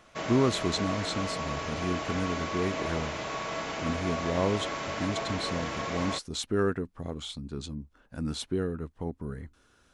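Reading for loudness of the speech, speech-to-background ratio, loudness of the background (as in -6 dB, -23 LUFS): -32.5 LUFS, 1.5 dB, -34.0 LUFS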